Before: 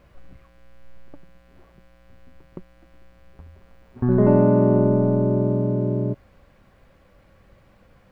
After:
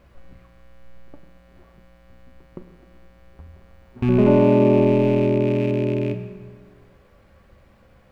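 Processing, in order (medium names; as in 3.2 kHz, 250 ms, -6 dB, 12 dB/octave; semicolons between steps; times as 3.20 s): rattle on loud lows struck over -21 dBFS, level -26 dBFS; reverberation RT60 1.8 s, pre-delay 7 ms, DRR 6 dB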